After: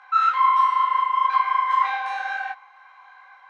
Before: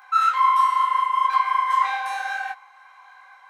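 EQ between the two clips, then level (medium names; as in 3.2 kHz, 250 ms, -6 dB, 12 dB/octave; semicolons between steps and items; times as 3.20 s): low-pass 4 kHz 12 dB/octave; 0.0 dB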